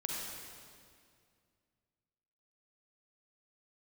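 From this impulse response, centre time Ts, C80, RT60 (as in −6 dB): 123 ms, 0.0 dB, 2.2 s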